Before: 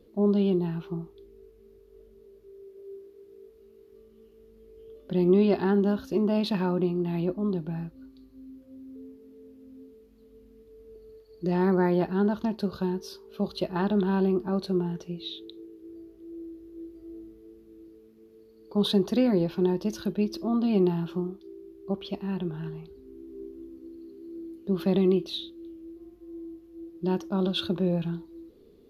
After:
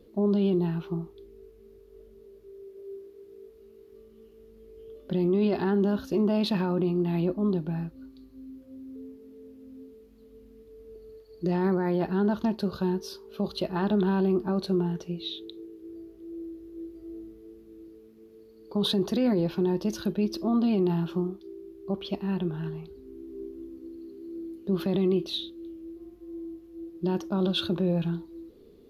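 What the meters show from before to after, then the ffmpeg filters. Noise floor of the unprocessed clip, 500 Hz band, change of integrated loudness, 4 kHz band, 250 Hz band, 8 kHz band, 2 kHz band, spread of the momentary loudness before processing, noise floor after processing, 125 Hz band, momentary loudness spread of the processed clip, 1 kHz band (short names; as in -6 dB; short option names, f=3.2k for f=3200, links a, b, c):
-56 dBFS, -1.0 dB, -0.5 dB, +1.5 dB, -0.5 dB, n/a, -0.5 dB, 22 LU, -54 dBFS, 0.0 dB, 19 LU, -0.5 dB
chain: -af "alimiter=limit=-19.5dB:level=0:latency=1:release=16,volume=2dB"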